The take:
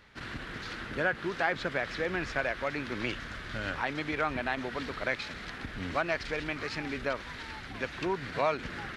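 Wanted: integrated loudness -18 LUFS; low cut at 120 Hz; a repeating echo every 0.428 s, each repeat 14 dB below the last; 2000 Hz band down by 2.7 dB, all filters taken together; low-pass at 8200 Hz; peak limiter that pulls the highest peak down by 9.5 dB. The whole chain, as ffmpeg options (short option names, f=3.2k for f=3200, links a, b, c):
-af "highpass=120,lowpass=8.2k,equalizer=f=2k:t=o:g=-3.5,alimiter=level_in=1dB:limit=-24dB:level=0:latency=1,volume=-1dB,aecho=1:1:428|856:0.2|0.0399,volume=19.5dB"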